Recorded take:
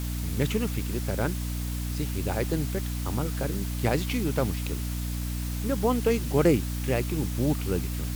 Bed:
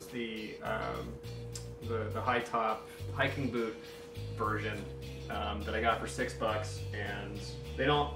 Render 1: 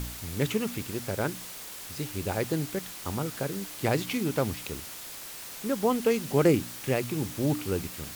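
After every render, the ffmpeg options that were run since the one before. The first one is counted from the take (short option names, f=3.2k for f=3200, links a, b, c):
-af "bandreject=f=60:t=h:w=4,bandreject=f=120:t=h:w=4,bandreject=f=180:t=h:w=4,bandreject=f=240:t=h:w=4,bandreject=f=300:t=h:w=4"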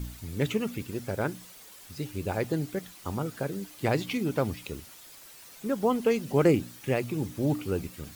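-af "afftdn=nr=10:nf=-42"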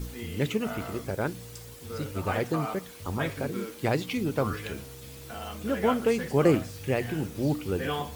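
-filter_complex "[1:a]volume=-2.5dB[a];[0:a][a]amix=inputs=2:normalize=0"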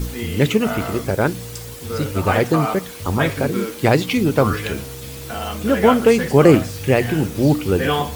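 -af "volume=11.5dB,alimiter=limit=-1dB:level=0:latency=1"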